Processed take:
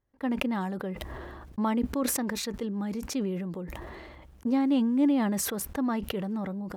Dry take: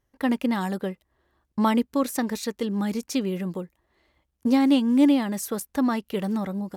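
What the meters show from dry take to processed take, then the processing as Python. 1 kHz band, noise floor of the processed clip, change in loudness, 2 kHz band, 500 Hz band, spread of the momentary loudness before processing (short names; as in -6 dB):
-5.5 dB, -52 dBFS, -4.5 dB, -3.5 dB, -5.0 dB, 13 LU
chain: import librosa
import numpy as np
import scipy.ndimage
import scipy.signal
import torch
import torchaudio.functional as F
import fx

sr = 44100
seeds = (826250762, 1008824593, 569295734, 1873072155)

y = fx.high_shelf(x, sr, hz=3000.0, db=-12.0)
y = fx.sustainer(y, sr, db_per_s=24.0)
y = y * 10.0 ** (-6.0 / 20.0)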